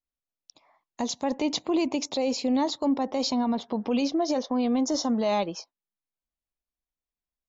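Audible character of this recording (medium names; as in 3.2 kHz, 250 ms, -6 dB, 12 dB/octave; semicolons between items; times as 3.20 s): noise floor -94 dBFS; spectral tilt -3.5 dB/octave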